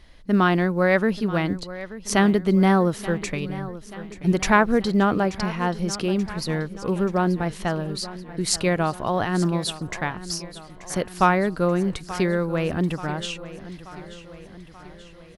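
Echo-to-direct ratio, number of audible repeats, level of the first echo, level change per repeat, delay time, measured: -14.0 dB, 4, -15.5 dB, -5.0 dB, 0.882 s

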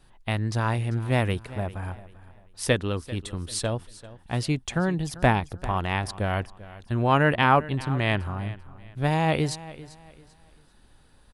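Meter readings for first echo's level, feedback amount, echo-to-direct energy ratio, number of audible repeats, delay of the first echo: -17.5 dB, 30%, -17.0 dB, 2, 0.392 s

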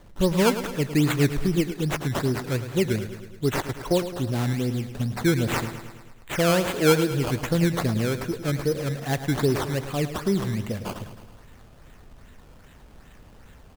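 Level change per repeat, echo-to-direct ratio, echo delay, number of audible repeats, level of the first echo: -4.5 dB, -9.5 dB, 0.107 s, 6, -11.5 dB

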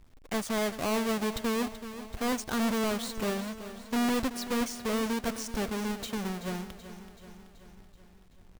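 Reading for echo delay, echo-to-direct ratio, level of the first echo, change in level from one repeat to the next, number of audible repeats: 0.38 s, -11.0 dB, -13.0 dB, -4.5 dB, 5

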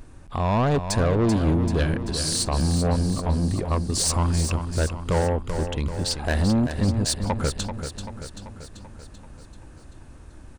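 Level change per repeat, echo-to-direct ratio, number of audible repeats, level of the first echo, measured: -4.5 dB, -6.5 dB, 6, -8.5 dB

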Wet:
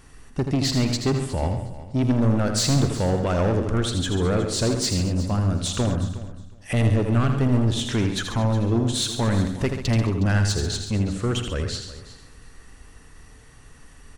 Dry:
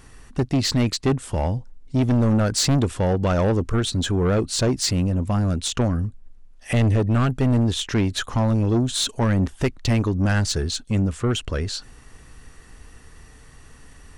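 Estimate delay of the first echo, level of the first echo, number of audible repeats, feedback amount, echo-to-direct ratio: 43 ms, -19.5 dB, 9, no steady repeat, -4.5 dB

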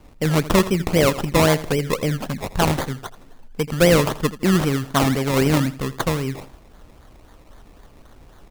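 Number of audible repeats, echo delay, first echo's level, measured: 2, 82 ms, -16.0 dB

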